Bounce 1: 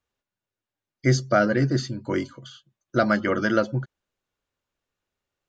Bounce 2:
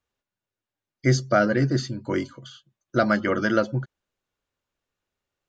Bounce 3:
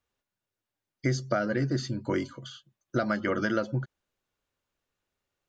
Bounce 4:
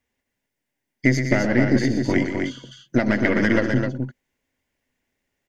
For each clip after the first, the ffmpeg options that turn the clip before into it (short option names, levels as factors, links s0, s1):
-af anull
-af "acompressor=threshold=0.0631:ratio=5"
-af "aeval=exprs='(tanh(10*val(0)+0.75)-tanh(0.75))/10':c=same,equalizer=f=250:t=o:w=0.33:g=10,equalizer=f=1250:t=o:w=0.33:g=-11,equalizer=f=2000:t=o:w=0.33:g=10,equalizer=f=4000:t=o:w=0.33:g=-5,aecho=1:1:84|120|195|259:0.133|0.376|0.211|0.562,volume=2.82"